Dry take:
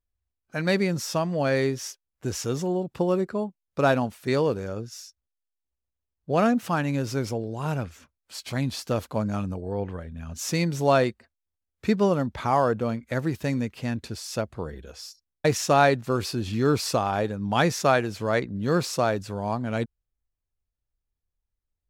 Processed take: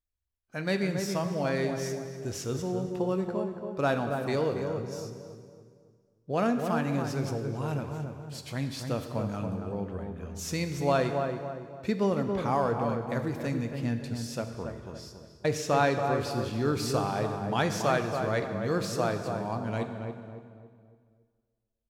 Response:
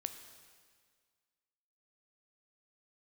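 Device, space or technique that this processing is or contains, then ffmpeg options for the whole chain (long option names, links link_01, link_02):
stairwell: -filter_complex "[1:a]atrim=start_sample=2205[link_01];[0:a][link_01]afir=irnorm=-1:irlink=0,asettb=1/sr,asplit=3[link_02][link_03][link_04];[link_02]atrim=end=14.504[link_05];[link_03]atrim=start=14.5:end=16.31,asetpts=PTS-STARTPTS,afade=type=in:duration=0.004:curve=qsin,afade=type=out:start_time=1.806:duration=0.004:curve=qsin,highshelf=frequency=6400:gain=-5[link_06];[link_04]atrim=start=16.306[link_07];[link_05][link_06]acrossfade=duration=0.004:curve1=hsin:curve2=qsin[link_08];[link_08][link_07]acrossfade=duration=0.004:curve1=qsin:curve2=hsin,asplit=2[link_09][link_10];[link_10]adelay=279,lowpass=frequency=1200:poles=1,volume=-4.5dB,asplit=2[link_11][link_12];[link_12]adelay=279,lowpass=frequency=1200:poles=1,volume=0.44,asplit=2[link_13][link_14];[link_14]adelay=279,lowpass=frequency=1200:poles=1,volume=0.44,asplit=2[link_15][link_16];[link_16]adelay=279,lowpass=frequency=1200:poles=1,volume=0.44,asplit=2[link_17][link_18];[link_18]adelay=279,lowpass=frequency=1200:poles=1,volume=0.44[link_19];[link_09][link_11][link_13][link_15][link_17][link_19]amix=inputs=6:normalize=0,volume=-4dB"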